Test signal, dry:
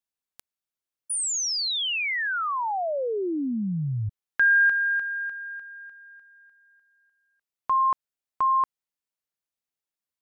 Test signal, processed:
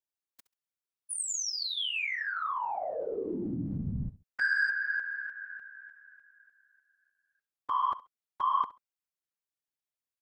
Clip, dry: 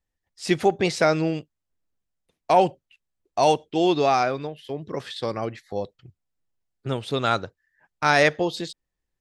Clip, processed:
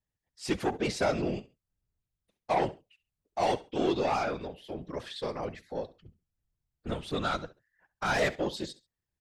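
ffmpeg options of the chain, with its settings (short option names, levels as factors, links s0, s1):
-af "asoftclip=type=tanh:threshold=0.158,aecho=1:1:68|136:0.133|0.0307,afftfilt=real='hypot(re,im)*cos(2*PI*random(0))':imag='hypot(re,im)*sin(2*PI*random(1))':win_size=512:overlap=0.75"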